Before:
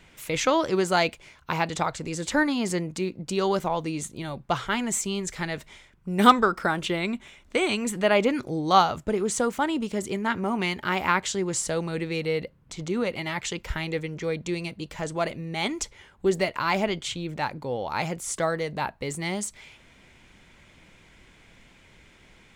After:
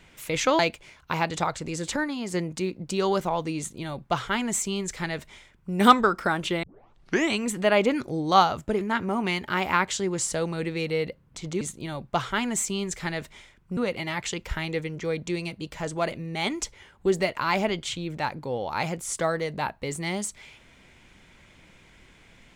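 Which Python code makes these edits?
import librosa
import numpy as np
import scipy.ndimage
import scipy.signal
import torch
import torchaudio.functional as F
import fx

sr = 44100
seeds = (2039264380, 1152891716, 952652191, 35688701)

y = fx.edit(x, sr, fx.cut(start_s=0.59, length_s=0.39),
    fx.clip_gain(start_s=2.35, length_s=0.38, db=-5.5),
    fx.duplicate(start_s=3.97, length_s=2.16, to_s=12.96),
    fx.tape_start(start_s=7.02, length_s=0.7),
    fx.cut(start_s=9.2, length_s=0.96), tone=tone)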